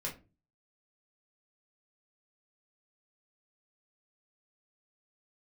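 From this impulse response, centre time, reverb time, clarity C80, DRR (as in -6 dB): 20 ms, 0.30 s, 18.5 dB, -3.5 dB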